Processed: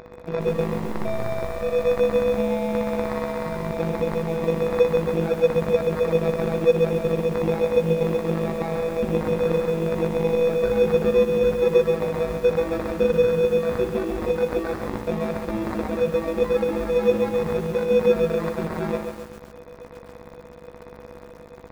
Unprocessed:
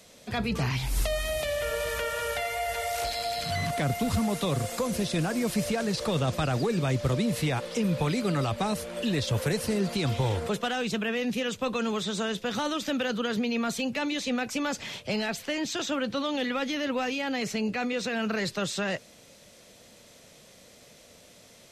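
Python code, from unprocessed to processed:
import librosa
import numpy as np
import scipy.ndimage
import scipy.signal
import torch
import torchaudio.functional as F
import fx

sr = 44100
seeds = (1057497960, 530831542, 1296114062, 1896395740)

p1 = fx.rattle_buzz(x, sr, strikes_db=-28.0, level_db=-24.0)
p2 = fx.highpass(p1, sr, hz=57.0, slope=6)
p3 = fx.high_shelf(p2, sr, hz=5000.0, db=6.5)
p4 = fx.over_compress(p3, sr, threshold_db=-35.0, ratio=-1.0)
p5 = p3 + F.gain(torch.from_numpy(p4), -2.0).numpy()
p6 = fx.small_body(p5, sr, hz=(480.0, 2700.0), ring_ms=30, db=16)
p7 = fx.robotise(p6, sr, hz=164.0)
p8 = fx.sample_hold(p7, sr, seeds[0], rate_hz=3000.0, jitter_pct=0)
p9 = fx.spacing_loss(p8, sr, db_at_10k=38)
p10 = fx.echo_feedback(p9, sr, ms=60, feedback_pct=32, wet_db=-9.0)
y = fx.echo_crushed(p10, sr, ms=136, feedback_pct=55, bits=7, wet_db=-6.0)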